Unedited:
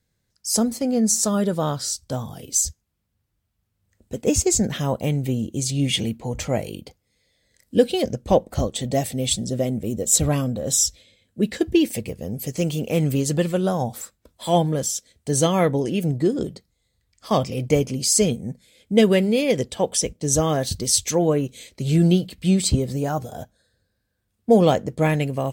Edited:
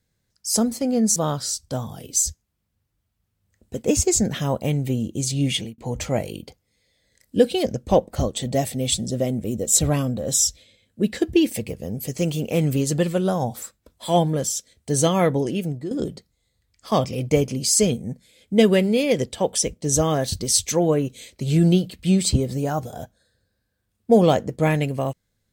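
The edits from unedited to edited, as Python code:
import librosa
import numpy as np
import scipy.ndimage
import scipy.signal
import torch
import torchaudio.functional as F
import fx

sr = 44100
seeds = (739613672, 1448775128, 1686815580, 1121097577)

y = fx.edit(x, sr, fx.cut(start_s=1.16, length_s=0.39),
    fx.fade_out_span(start_s=5.88, length_s=0.29),
    fx.fade_out_to(start_s=15.85, length_s=0.45, floor_db=-13.5), tone=tone)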